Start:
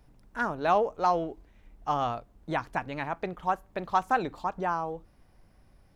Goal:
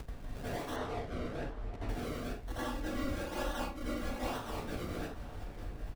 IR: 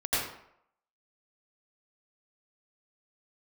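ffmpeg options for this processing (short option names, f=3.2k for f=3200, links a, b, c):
-filter_complex "[0:a]acompressor=threshold=-36dB:ratio=16,asoftclip=type=tanh:threshold=-37.5dB,acrossover=split=1500[a][b];[a]aeval=exprs='val(0)*(1-1/2+1/2*cos(2*PI*4.5*n/s))':c=same[c];[b]aeval=exprs='val(0)*(1-1/2-1/2*cos(2*PI*4.5*n/s))':c=same[d];[c][d]amix=inputs=2:normalize=0,acrusher=samples=35:mix=1:aa=0.000001:lfo=1:lforange=35:lforate=1.1,aeval=exprs='(mod(299*val(0)+1,2)-1)/299':c=same,asettb=1/sr,asplit=3[e][f][g];[e]atrim=end=2.504[h];[f]atrim=start=2.5:end=4.19,asetpts=PTS-STARTPTS,afade=t=in:d=0.004:c=qsin,afade=t=out:st=1.686:d=0.004:c=qsin,aecho=1:1:3.6:0.91,atrim=end_sample=74529[i];[g]atrim=start=4.186[j];[h][i]acrossfade=d=0.004:c1=hsin:c2=qsin[k];[k][j]acrossfade=d=0.004:c1=qsin:c2=hsin[l];[1:a]atrim=start_sample=2205,afade=t=out:st=0.23:d=0.01,atrim=end_sample=10584[m];[l][m]afir=irnorm=-1:irlink=0,acompressor=mode=upward:threshold=-43dB:ratio=2.5,asettb=1/sr,asplit=3[n][o][p];[n]atrim=end=0.764[q];[o]atrim=start=0.76:end=1.89,asetpts=PTS-STARTPTS,afade=t=in:d=0.004:c=qsin,afade=t=out:st=1.126:d=0.004:c=qsin,aemphasis=mode=reproduction:type=50fm[r];[p]atrim=start=1.886[s];[q][r]acrossfade=d=0.004:c1=hsin:c2=qsin[t];[t][s]acrossfade=d=0.004:c1=qsin:c2=hsin,asplit=2[u][v];[v]adelay=758,volume=-13dB,highshelf=f=4k:g=-17.1[w];[u][w]amix=inputs=2:normalize=0,volume=7dB"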